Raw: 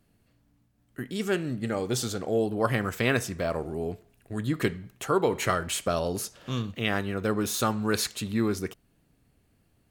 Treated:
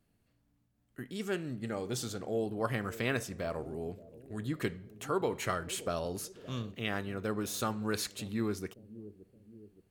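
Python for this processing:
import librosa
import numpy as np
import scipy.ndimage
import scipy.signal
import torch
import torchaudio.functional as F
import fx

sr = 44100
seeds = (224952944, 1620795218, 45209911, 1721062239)

y = fx.echo_bbd(x, sr, ms=570, stages=2048, feedback_pct=52, wet_db=-16.0)
y = y * 10.0 ** (-7.5 / 20.0)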